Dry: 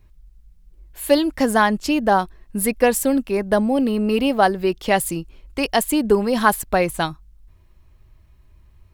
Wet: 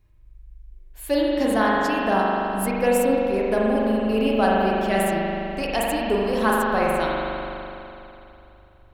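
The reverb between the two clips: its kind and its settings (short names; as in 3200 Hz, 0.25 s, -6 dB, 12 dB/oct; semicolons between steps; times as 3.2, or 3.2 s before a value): spring tank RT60 3 s, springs 41 ms, chirp 45 ms, DRR -5 dB; gain -8 dB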